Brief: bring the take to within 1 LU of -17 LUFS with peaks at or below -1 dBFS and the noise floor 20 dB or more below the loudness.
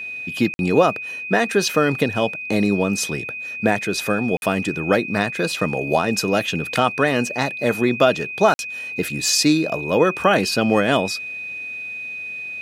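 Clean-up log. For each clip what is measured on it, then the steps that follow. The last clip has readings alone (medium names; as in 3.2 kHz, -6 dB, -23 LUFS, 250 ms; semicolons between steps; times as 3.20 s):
dropouts 3; longest dropout 51 ms; steady tone 2.5 kHz; tone level -28 dBFS; loudness -20.5 LUFS; peak level -2.0 dBFS; loudness target -17.0 LUFS
-> interpolate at 0.54/4.37/8.54 s, 51 ms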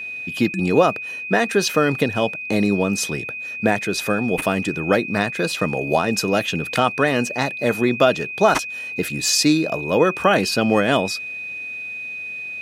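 dropouts 0; steady tone 2.5 kHz; tone level -28 dBFS
-> band-stop 2.5 kHz, Q 30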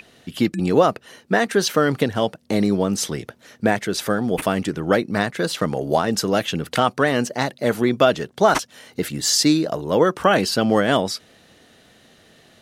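steady tone not found; loudness -20.5 LUFS; peak level -2.5 dBFS; loudness target -17.0 LUFS
-> trim +3.5 dB; peak limiter -1 dBFS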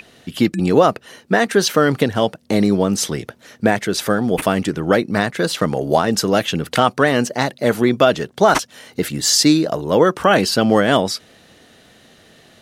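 loudness -17.0 LUFS; peak level -1.0 dBFS; noise floor -50 dBFS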